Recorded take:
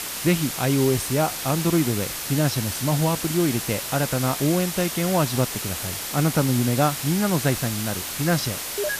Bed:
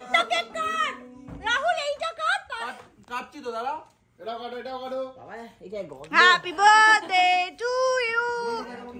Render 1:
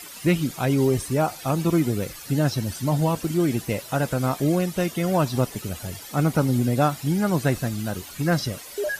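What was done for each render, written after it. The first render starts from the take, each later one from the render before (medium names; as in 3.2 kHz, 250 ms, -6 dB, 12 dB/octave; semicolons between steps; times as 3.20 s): noise reduction 14 dB, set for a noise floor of -31 dBFS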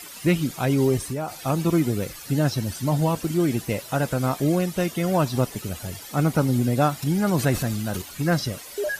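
0.97–1.43 s: compression 3:1, threshold -26 dBFS; 7.02–8.02 s: transient shaper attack 0 dB, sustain +7 dB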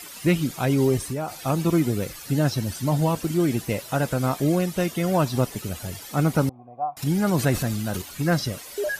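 6.49–6.97 s: cascade formant filter a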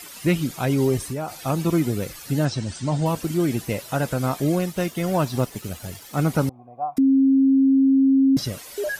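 2.45–3.06 s: elliptic low-pass 8.6 kHz; 4.58–6.20 s: companding laws mixed up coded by A; 6.98–8.37 s: bleep 269 Hz -13 dBFS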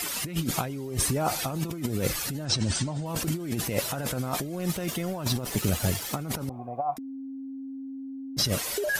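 compressor with a negative ratio -31 dBFS, ratio -1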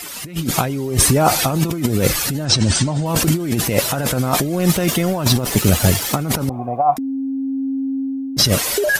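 level rider gain up to 16.5 dB; attacks held to a fixed rise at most 370 dB/s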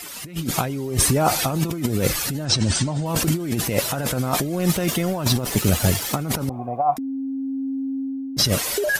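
trim -4.5 dB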